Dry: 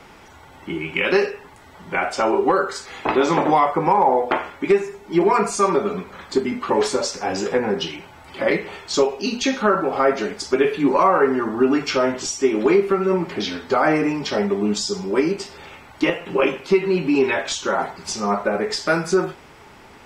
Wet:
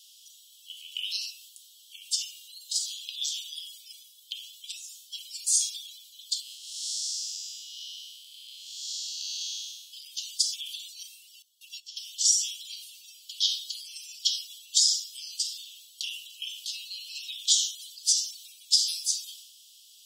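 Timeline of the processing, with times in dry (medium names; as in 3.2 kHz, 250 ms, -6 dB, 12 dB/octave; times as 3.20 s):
6.41–9.92 s: spectral blur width 367 ms
11.42–12.00 s: gate -20 dBFS, range -21 dB
whole clip: steep high-pass 3 kHz 96 dB/octave; treble shelf 7.7 kHz +10 dB; transient shaper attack +3 dB, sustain +7 dB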